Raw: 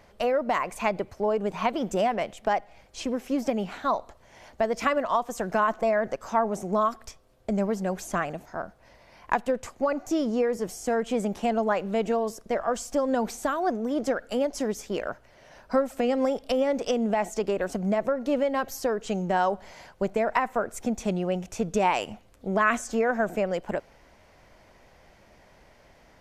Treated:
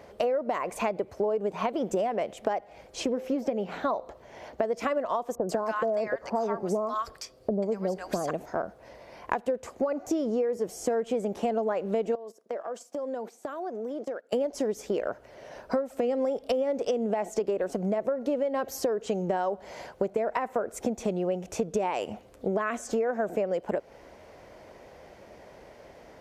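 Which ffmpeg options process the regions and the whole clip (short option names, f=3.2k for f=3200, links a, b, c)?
-filter_complex "[0:a]asettb=1/sr,asplit=3[a][b][c];[a]atrim=end=3.084[d];[b]atrim=start=3.08:end=4.63,asetpts=PTS-STARTPTS,afade=t=in:d=0.004:c=qsin,afade=t=out:st=1.546:d=0.004:c=qsin,equalizer=f=9.2k:w=0.88:g=-7,bandreject=f=172.6:t=h:w=4,bandreject=f=345.2:t=h:w=4,bandreject=f=517.8:t=h:w=4[e];[c]atrim=start=4.626[f];[d][e]acrossfade=d=0.004:c1=hsin:c2=qsin[g];[g][f]acrossfade=d=0.004:c1=qsin:c2=hsin,asettb=1/sr,asplit=3[h][i][j];[h]atrim=end=5.354[k];[i]atrim=start=5.35:end=8.31,asetpts=PTS-STARTPTS,afade=t=in:d=0.004:c=qsin,afade=t=out:st=2.956:d=0.004:c=qsin,equalizer=f=4.7k:t=o:w=0.22:g=10.5,acrossover=split=990[l][m];[m]adelay=140[n];[l][n]amix=inputs=2:normalize=0,atrim=end_sample=130536[o];[j]atrim=start=8.306[p];[k][o]acrossfade=d=0.004:c1=hsin:c2=qsin[q];[q][p]acrossfade=d=0.004:c1=qsin:c2=hsin,asettb=1/sr,asplit=3[r][s][t];[r]atrim=end=12.154[u];[s]atrim=start=12.15:end=14.33,asetpts=PTS-STARTPTS,afade=t=in:d=0.004:c=qsin,afade=t=out:st=2.176:d=0.004:c=qsin,agate=range=-19dB:threshold=-35dB:ratio=16:release=100:detection=peak,highpass=250,acompressor=threshold=-41dB:ratio=5:attack=3.2:release=140:knee=1:detection=peak[v];[t]atrim=start=14.326[w];[u][v]acrossfade=d=0.004:c1=hsin:c2=qsin[x];[x][w]acrossfade=d=0.004:c1=qsin:c2=hsin,highpass=45,equalizer=f=460:t=o:w=1.5:g=9.5,acompressor=threshold=-27dB:ratio=6,volume=1.5dB"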